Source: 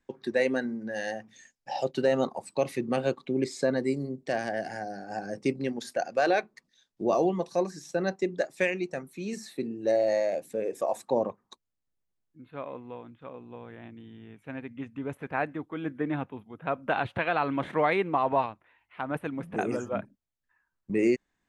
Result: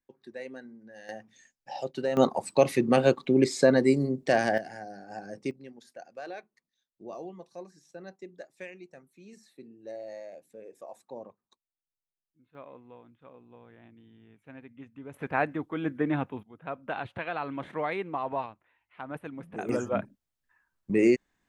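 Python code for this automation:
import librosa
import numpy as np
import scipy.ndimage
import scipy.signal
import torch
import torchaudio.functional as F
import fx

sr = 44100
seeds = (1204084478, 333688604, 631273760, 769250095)

y = fx.gain(x, sr, db=fx.steps((0.0, -15.0), (1.09, -5.0), (2.17, 6.0), (4.58, -5.5), (5.51, -16.0), (12.55, -9.0), (15.14, 2.5), (16.43, -6.5), (19.69, 2.5)))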